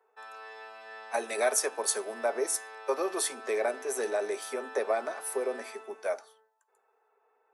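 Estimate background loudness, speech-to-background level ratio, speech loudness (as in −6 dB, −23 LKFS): −45.0 LKFS, 13.5 dB, −31.5 LKFS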